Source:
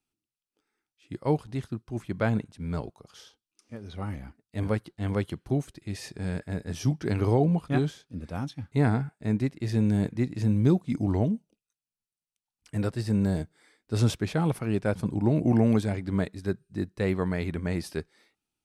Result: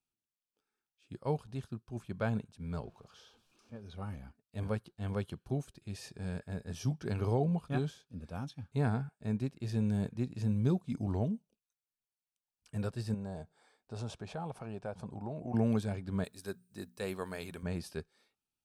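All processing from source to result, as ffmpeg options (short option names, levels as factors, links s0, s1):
-filter_complex "[0:a]asettb=1/sr,asplit=3[s0][s1][s2];[s0]atrim=end=2.834[s3];[s1]atrim=start=2.83:end=3.81,asetpts=PTS-STARTPTS,afade=t=in:d=0.004:c=qsin,afade=t=out:st=0.976:d=0.004:c=qsin,aeval=exprs='val(0)+0.5*0.00237*sgn(val(0))':c=same,aemphasis=mode=reproduction:type=50fm,bandreject=f=1900:w=21[s4];[s2]atrim=start=3.806[s5];[s3][s4]acrossfade=d=0.004:c1=hsin:c2=qsin[s6];[s6][s5]acrossfade=d=0.004:c1=qsin:c2=hsin,asettb=1/sr,asplit=3[s7][s8][s9];[s7]atrim=end=13.144[s10];[s8]atrim=start=13.14:end=15.54,asetpts=PTS-STARTPTS,afade=t=in:d=0.004:c=qsin,afade=t=out:st=2.396:d=0.004:c=qsin,equalizer=f=750:t=o:w=1.1:g=10.5,acompressor=threshold=0.0141:ratio=2:attack=3.2:release=140:knee=1:detection=peak,lowpass=f=9700:w=0.5412,lowpass=f=9700:w=1.3066[s11];[s9]atrim=start=15.536[s12];[s10][s11]acrossfade=d=0.004:c1=hsin:c2=qsin[s13];[s13][s12]acrossfade=d=0.004:c1=qsin:c2=hsin,asettb=1/sr,asplit=3[s14][s15][s16];[s14]atrim=end=16.244[s17];[s15]atrim=start=16.24:end=17.63,asetpts=PTS-STARTPTS,afade=t=in:d=0.004:c=qsin,afade=t=out:st=1.386:d=0.004:c=qsin,aemphasis=mode=production:type=bsi,bandreject=f=60:t=h:w=6,bandreject=f=120:t=h:w=6,bandreject=f=180:t=h:w=6,bandreject=f=240:t=h:w=6[s18];[s16]atrim=start=17.626[s19];[s17][s18]acrossfade=d=0.004:c1=hsin:c2=qsin[s20];[s20][s19]acrossfade=d=0.004:c1=qsin:c2=hsin,equalizer=f=310:w=6.4:g=-9.5,bandreject=f=2000:w=5.1,volume=0.447"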